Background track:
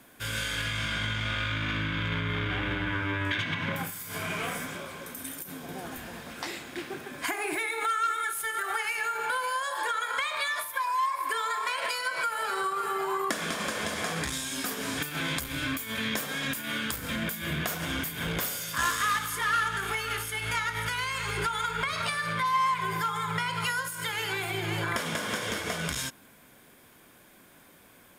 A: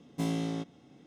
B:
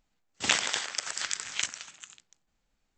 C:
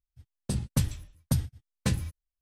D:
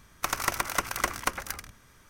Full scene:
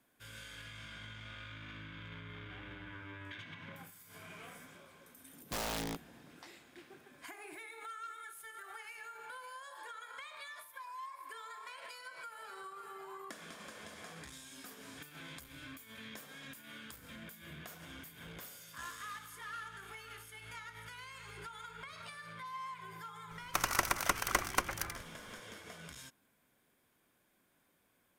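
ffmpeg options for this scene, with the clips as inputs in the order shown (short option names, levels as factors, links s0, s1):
-filter_complex "[0:a]volume=0.119[s0];[1:a]aeval=exprs='(mod(25.1*val(0)+1,2)-1)/25.1':c=same,atrim=end=1.06,asetpts=PTS-STARTPTS,volume=0.631,afade=t=in:d=0.004:c=hsin,afade=t=out:st=1.056:d=0.004:c=hsin,adelay=235053S[s1];[4:a]atrim=end=2.09,asetpts=PTS-STARTPTS,volume=0.668,afade=t=in:d=0.004:c=hsin,afade=t=out:st=2.086:d=0.004:c=hsin,adelay=23310[s2];[s0][s1][s2]amix=inputs=3:normalize=0"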